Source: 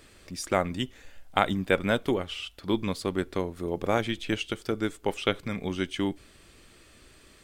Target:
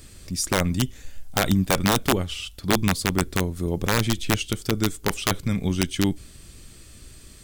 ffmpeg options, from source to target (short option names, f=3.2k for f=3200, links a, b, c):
-af "bass=f=250:g=13,treble=f=4k:g=12,aeval=exprs='(mod(3.35*val(0)+1,2)-1)/3.35':c=same"